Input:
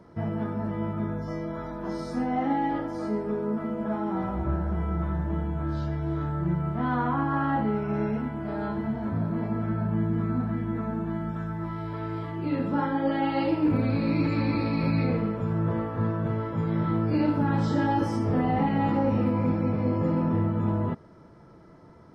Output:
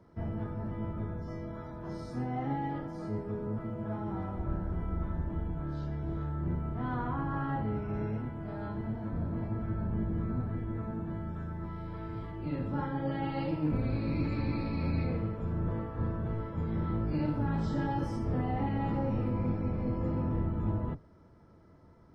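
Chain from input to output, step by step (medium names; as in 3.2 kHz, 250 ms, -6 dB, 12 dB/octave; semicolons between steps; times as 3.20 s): octave divider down 1 oct, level +1 dB; trim -9 dB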